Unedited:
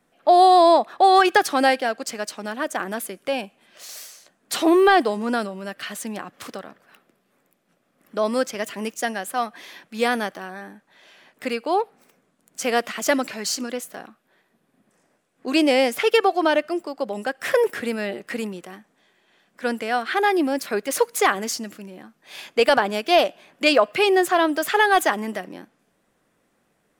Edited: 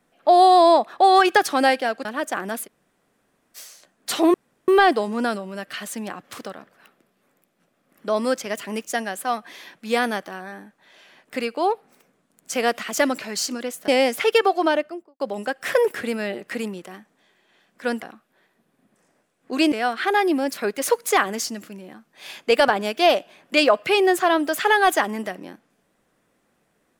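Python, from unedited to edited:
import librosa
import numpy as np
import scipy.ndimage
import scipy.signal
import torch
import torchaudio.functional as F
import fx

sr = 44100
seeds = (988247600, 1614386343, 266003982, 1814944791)

y = fx.studio_fade_out(x, sr, start_s=16.41, length_s=0.58)
y = fx.edit(y, sr, fx.cut(start_s=2.05, length_s=0.43),
    fx.room_tone_fill(start_s=3.09, length_s=0.9, crossfade_s=0.04),
    fx.insert_room_tone(at_s=4.77, length_s=0.34),
    fx.move(start_s=13.97, length_s=1.7, to_s=19.81), tone=tone)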